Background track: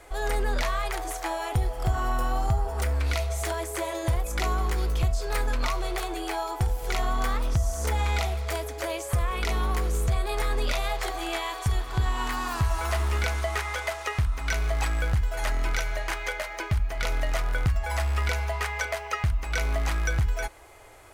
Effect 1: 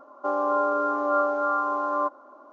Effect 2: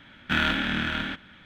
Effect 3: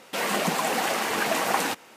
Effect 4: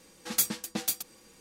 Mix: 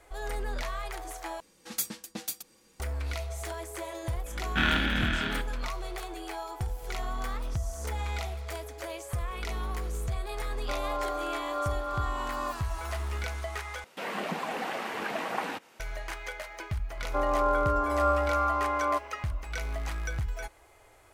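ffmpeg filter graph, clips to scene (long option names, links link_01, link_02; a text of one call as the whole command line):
ffmpeg -i bed.wav -i cue0.wav -i cue1.wav -i cue2.wav -i cue3.wav -filter_complex "[1:a]asplit=2[link_01][link_02];[0:a]volume=-7.5dB[link_03];[3:a]acrossover=split=3600[link_04][link_05];[link_05]acompressor=threshold=-45dB:ratio=4:attack=1:release=60[link_06];[link_04][link_06]amix=inputs=2:normalize=0[link_07];[link_03]asplit=3[link_08][link_09][link_10];[link_08]atrim=end=1.404[link_11];[4:a]atrim=end=1.4,asetpts=PTS-STARTPTS,volume=-5.5dB[link_12];[link_09]atrim=start=2.796:end=13.844[link_13];[link_07]atrim=end=1.96,asetpts=PTS-STARTPTS,volume=-7.5dB[link_14];[link_10]atrim=start=15.796[link_15];[2:a]atrim=end=1.45,asetpts=PTS-STARTPTS,volume=-2dB,afade=type=in:duration=0.004:curve=hsin,afade=type=out:start_time=1.446:duration=0.004:curve=hsin,adelay=4260[link_16];[link_01]atrim=end=2.52,asetpts=PTS-STARTPTS,volume=-9.5dB,afade=type=in:duration=0.004:curve=hsin,afade=type=out:start_time=2.516:duration=0.004:curve=hsin,adelay=10440[link_17];[link_02]atrim=end=2.52,asetpts=PTS-STARTPTS,volume=-2.5dB,afade=type=in:duration=0.004:curve=hsin,afade=type=out:start_time=2.516:duration=0.004:curve=hsin,adelay=16900[link_18];[link_11][link_12]acrossfade=duration=0.004:curve1=hsin:curve2=hsin[link_19];[link_19][link_13]acrossfade=duration=0.004:curve1=hsin:curve2=hsin[link_20];[link_20][link_14]acrossfade=duration=0.004:curve1=hsin:curve2=hsin[link_21];[link_21][link_15]acrossfade=duration=0.004:curve1=hsin:curve2=hsin[link_22];[link_22][link_16][link_17][link_18]amix=inputs=4:normalize=0" out.wav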